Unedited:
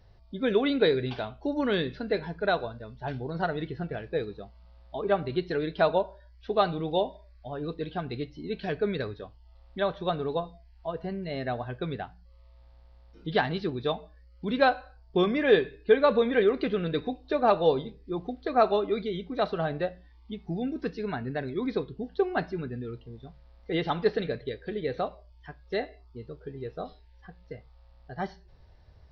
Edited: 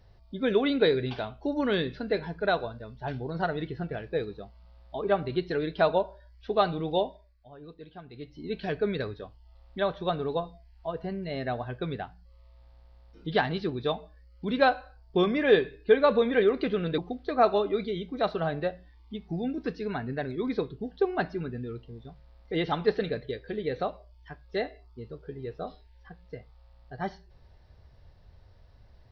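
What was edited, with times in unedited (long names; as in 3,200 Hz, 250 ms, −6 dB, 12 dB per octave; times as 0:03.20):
0:06.99–0:08.50: duck −12.5 dB, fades 0.37 s
0:16.98–0:18.16: remove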